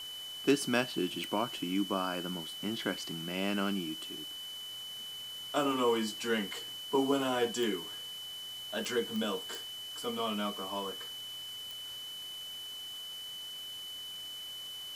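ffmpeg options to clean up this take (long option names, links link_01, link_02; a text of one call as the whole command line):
ffmpeg -i in.wav -af "adeclick=threshold=4,bandreject=frequency=3000:width=30,afwtdn=0.0028" out.wav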